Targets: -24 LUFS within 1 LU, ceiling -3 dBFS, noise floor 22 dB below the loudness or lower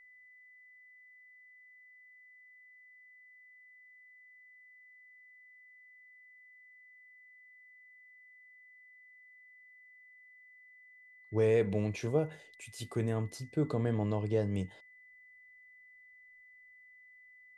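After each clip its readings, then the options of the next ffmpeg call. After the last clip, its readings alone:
steady tone 2 kHz; tone level -56 dBFS; loudness -33.5 LUFS; peak level -17.5 dBFS; loudness target -24.0 LUFS
-> -af "bandreject=f=2000:w=30"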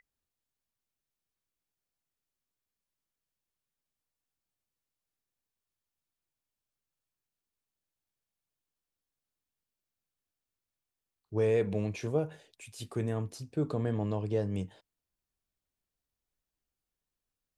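steady tone not found; loudness -33.0 LUFS; peak level -17.0 dBFS; loudness target -24.0 LUFS
-> -af "volume=2.82"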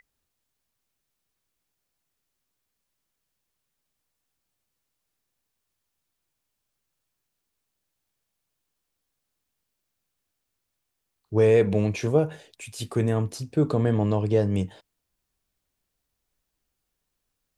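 loudness -24.0 LUFS; peak level -8.0 dBFS; noise floor -81 dBFS

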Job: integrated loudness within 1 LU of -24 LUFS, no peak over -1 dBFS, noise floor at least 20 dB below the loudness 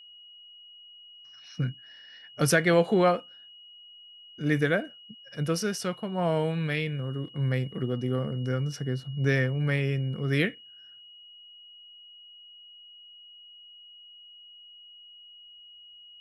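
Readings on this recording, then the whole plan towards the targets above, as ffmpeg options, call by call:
steady tone 2.9 kHz; tone level -48 dBFS; loudness -27.5 LUFS; peak level -9.5 dBFS; loudness target -24.0 LUFS
-> -af "bandreject=f=2900:w=30"
-af "volume=1.5"

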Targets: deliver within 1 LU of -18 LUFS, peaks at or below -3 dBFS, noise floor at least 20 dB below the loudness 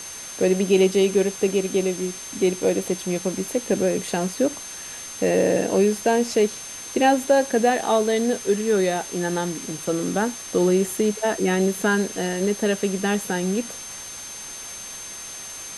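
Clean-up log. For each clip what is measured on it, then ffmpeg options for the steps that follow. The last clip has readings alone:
steady tone 6.3 kHz; tone level -36 dBFS; noise floor -36 dBFS; noise floor target -42 dBFS; loudness -22.0 LUFS; peak level -6.5 dBFS; loudness target -18.0 LUFS
-> -af "bandreject=f=6300:w=30"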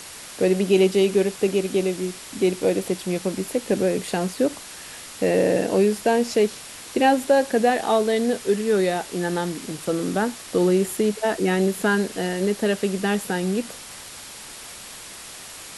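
steady tone not found; noise floor -40 dBFS; noise floor target -43 dBFS
-> -af "afftdn=nr=6:nf=-40"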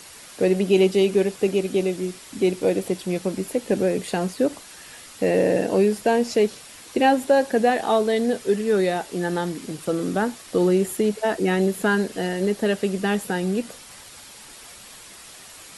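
noise floor -44 dBFS; loudness -22.5 LUFS; peak level -6.5 dBFS; loudness target -18.0 LUFS
-> -af "volume=1.68,alimiter=limit=0.708:level=0:latency=1"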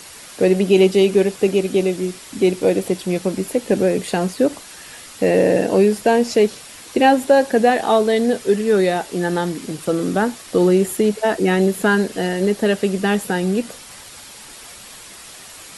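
loudness -18.0 LUFS; peak level -3.0 dBFS; noise floor -39 dBFS

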